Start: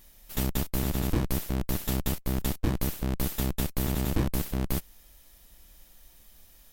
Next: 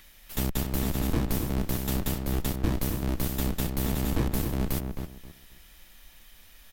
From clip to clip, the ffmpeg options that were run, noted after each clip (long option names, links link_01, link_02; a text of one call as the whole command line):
ffmpeg -i in.wav -filter_complex "[0:a]acrossover=split=390|1400|3500[link_01][link_02][link_03][link_04];[link_03]acompressor=mode=upward:threshold=-51dB:ratio=2.5[link_05];[link_01][link_02][link_05][link_04]amix=inputs=4:normalize=0,asplit=2[link_06][link_07];[link_07]adelay=265,lowpass=frequency=2000:poles=1,volume=-5dB,asplit=2[link_08][link_09];[link_09]adelay=265,lowpass=frequency=2000:poles=1,volume=0.24,asplit=2[link_10][link_11];[link_11]adelay=265,lowpass=frequency=2000:poles=1,volume=0.24[link_12];[link_06][link_08][link_10][link_12]amix=inputs=4:normalize=0" out.wav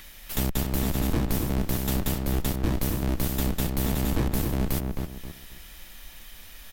ffmpeg -i in.wav -filter_complex "[0:a]asplit=2[link_01][link_02];[link_02]acompressor=threshold=-36dB:ratio=6,volume=3dB[link_03];[link_01][link_03]amix=inputs=2:normalize=0,asoftclip=type=tanh:threshold=-13.5dB" out.wav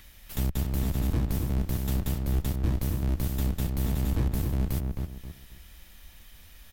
ffmpeg -i in.wav -af "equalizer=frequency=80:width_type=o:width=2.1:gain=10,volume=-7.5dB" out.wav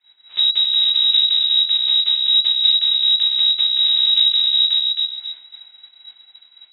ffmpeg -i in.wav -af "lowpass=frequency=3300:width_type=q:width=0.5098,lowpass=frequency=3300:width_type=q:width=0.6013,lowpass=frequency=3300:width_type=q:width=0.9,lowpass=frequency=3300:width_type=q:width=2.563,afreqshift=-3900,agate=range=-33dB:threshold=-42dB:ratio=3:detection=peak,crystalizer=i=5.5:c=0" out.wav